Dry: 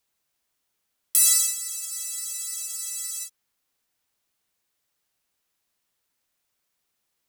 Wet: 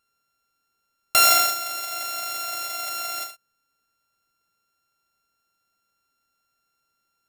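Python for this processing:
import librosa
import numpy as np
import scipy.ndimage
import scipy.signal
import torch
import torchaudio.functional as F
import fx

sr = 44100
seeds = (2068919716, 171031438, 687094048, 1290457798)

p1 = np.r_[np.sort(x[:len(x) // 32 * 32].reshape(-1, 32), axis=1).ravel(), x[len(x) // 32 * 32:]]
p2 = p1 + fx.echo_single(p1, sr, ms=72, db=-9.5, dry=0)
y = p2 * 10.0 ** (2.0 / 20.0)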